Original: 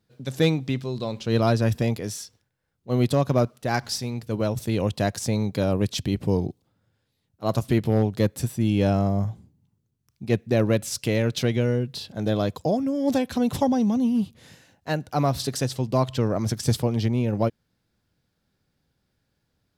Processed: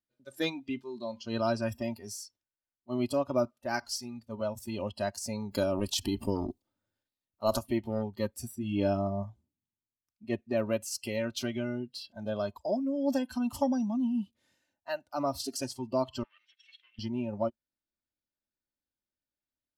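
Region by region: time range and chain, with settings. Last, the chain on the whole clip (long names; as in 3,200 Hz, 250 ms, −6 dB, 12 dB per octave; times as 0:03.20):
0:05.51–0:07.58: high-shelf EQ 6,800 Hz +4.5 dB + transient designer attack +6 dB, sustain +10 dB
0:08.55–0:09.23: double-tracking delay 20 ms −8 dB + one half of a high-frequency compander decoder only
0:16.23–0:16.99: lower of the sound and its delayed copy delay 0.53 ms + flat-topped band-pass 2,700 Hz, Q 1.8
whole clip: noise reduction from a noise print of the clip's start 16 dB; parametric band 89 Hz −7 dB 2.2 octaves; comb filter 3.3 ms, depth 55%; level −7 dB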